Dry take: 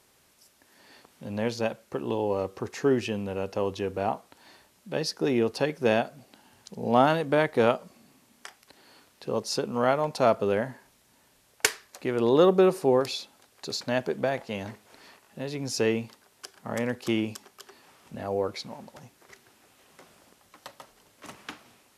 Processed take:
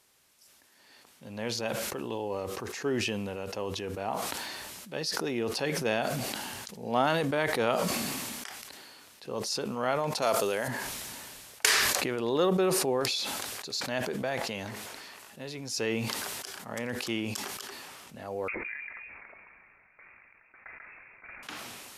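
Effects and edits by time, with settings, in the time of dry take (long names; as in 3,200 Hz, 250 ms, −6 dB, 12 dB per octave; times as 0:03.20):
0:10.22–0:10.68: bass and treble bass −9 dB, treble +13 dB
0:18.48–0:21.43: voice inversion scrambler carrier 2,600 Hz
whole clip: tilt shelving filter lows −3.5 dB, about 1,100 Hz; level that may fall only so fast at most 21 dB per second; level −5 dB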